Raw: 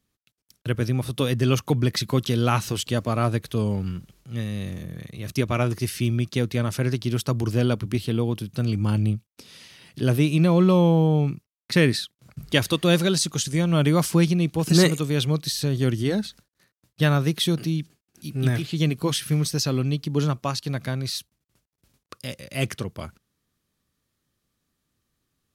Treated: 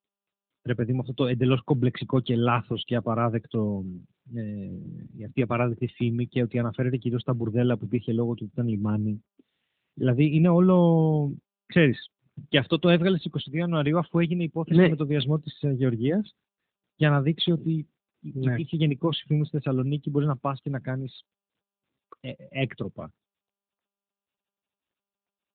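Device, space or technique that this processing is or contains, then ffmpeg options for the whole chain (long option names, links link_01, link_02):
mobile call with aggressive noise cancelling: -filter_complex "[0:a]asplit=3[link_01][link_02][link_03];[link_01]afade=type=out:start_time=13.38:duration=0.02[link_04];[link_02]lowshelf=frequency=390:gain=-5,afade=type=in:start_time=13.38:duration=0.02,afade=type=out:start_time=14.74:duration=0.02[link_05];[link_03]afade=type=in:start_time=14.74:duration=0.02[link_06];[link_04][link_05][link_06]amix=inputs=3:normalize=0,highpass=120,afftdn=noise_reduction=26:noise_floor=-34" -ar 8000 -c:a libopencore_amrnb -b:a 10200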